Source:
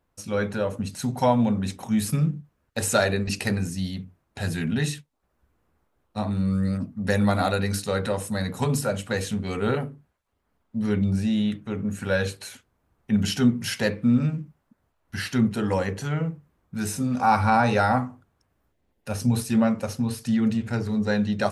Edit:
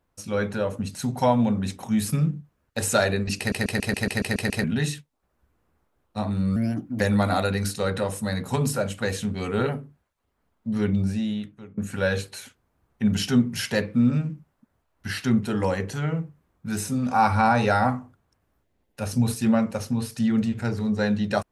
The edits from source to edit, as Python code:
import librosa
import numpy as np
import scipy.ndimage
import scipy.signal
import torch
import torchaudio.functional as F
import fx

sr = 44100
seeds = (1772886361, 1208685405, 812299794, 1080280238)

y = fx.edit(x, sr, fx.stutter_over(start_s=3.38, slice_s=0.14, count=9),
    fx.speed_span(start_s=6.56, length_s=0.53, speed=1.19),
    fx.fade_out_to(start_s=11.06, length_s=0.8, floor_db=-24.0), tone=tone)